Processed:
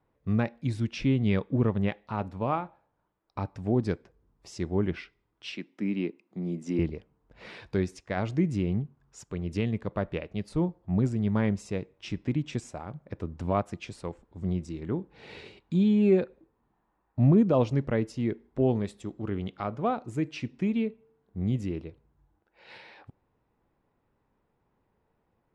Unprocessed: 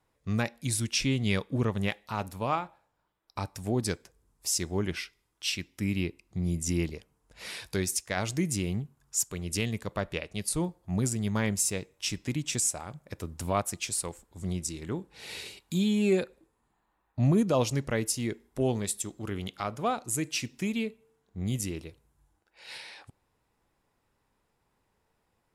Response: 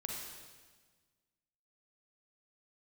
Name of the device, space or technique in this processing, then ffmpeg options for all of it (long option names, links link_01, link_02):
phone in a pocket: -filter_complex "[0:a]asettb=1/sr,asplit=3[link_01][link_02][link_03];[link_01]atrim=end=5.524[link_04];[link_02]atrim=start=5.52:end=6.79,asetpts=PTS-STARTPTS,afade=type=in:duration=0.004:curve=qsin,afade=type=out:start_time=1.266:duration=0.004:curve=qsin,highpass=frequency=200:width=0.5412,highpass=frequency=200:width=1.3066[link_05];[link_03]atrim=start=6.786[link_06];[link_04][link_05]acrossfade=duration=0.004:curve1=hsin:curve2=qsin[link_07];[link_07][link_06]acrossfade=duration=0.004:curve1=qsin:curve2=hsin,lowpass=3900,equalizer=frequency=240:width_type=o:width=2.8:gain=4,highshelf=frequency=2500:gain=-10.5"